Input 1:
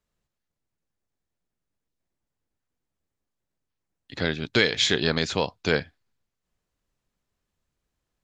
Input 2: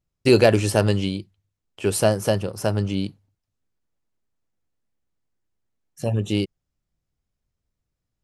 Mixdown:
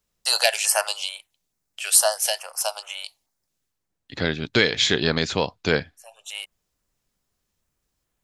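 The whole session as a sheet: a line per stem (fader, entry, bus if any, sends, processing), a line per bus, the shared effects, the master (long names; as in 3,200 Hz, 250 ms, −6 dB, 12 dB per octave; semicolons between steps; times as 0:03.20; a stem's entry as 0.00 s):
+2.0 dB, 0.00 s, no send, no processing
+1.5 dB, 0.00 s, no send, Butterworth high-pass 660 Hz 48 dB per octave; high-shelf EQ 2,500 Hz +11 dB; notch on a step sequencer 4.6 Hz 920–4,700 Hz; automatic ducking −20 dB, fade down 0.45 s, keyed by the first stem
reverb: not used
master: no processing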